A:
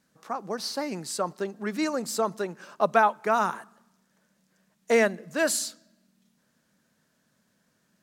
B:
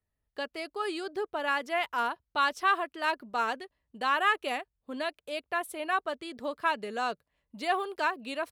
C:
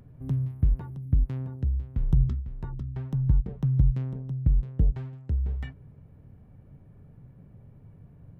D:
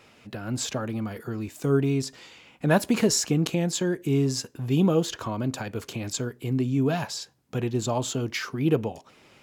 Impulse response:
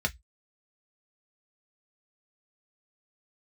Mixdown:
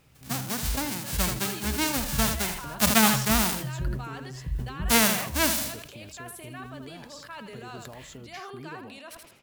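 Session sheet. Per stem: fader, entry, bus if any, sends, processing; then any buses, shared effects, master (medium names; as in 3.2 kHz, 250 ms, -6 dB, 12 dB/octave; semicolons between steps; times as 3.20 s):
0.0 dB, 0.00 s, no send, echo send -11.5 dB, formants flattened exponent 0.1
-13.5 dB, 0.65 s, no send, echo send -8 dB, tilt shelf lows -3.5 dB; peak limiter -18.5 dBFS, peak gain reduction 6.5 dB; decay stretcher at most 21 dB/s
-13.0 dB, 0.00 s, send -12.5 dB, no echo send, none
-11.0 dB, 0.00 s, no send, no echo send, compression, threshold -30 dBFS, peak gain reduction 14 dB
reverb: on, RT60 0.10 s, pre-delay 3 ms
echo: feedback delay 81 ms, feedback 30%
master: decay stretcher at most 65 dB/s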